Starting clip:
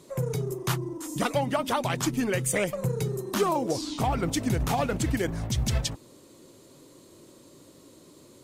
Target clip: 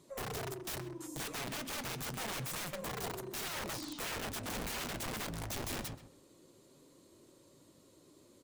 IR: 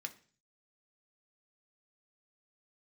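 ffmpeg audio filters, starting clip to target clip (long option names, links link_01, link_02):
-filter_complex "[0:a]aeval=exprs='(mod(17.8*val(0)+1,2)-1)/17.8':channel_layout=same,asplit=2[link_01][link_02];[link_02]adelay=130,lowpass=frequency=2900:poles=1,volume=-12dB,asplit=2[link_03][link_04];[link_04]adelay=130,lowpass=frequency=2900:poles=1,volume=0.24,asplit=2[link_05][link_06];[link_06]adelay=130,lowpass=frequency=2900:poles=1,volume=0.24[link_07];[link_01][link_03][link_05][link_07]amix=inputs=4:normalize=0,flanger=delay=0.9:depth=8.1:regen=-73:speed=0.26:shape=triangular,volume=-5.5dB"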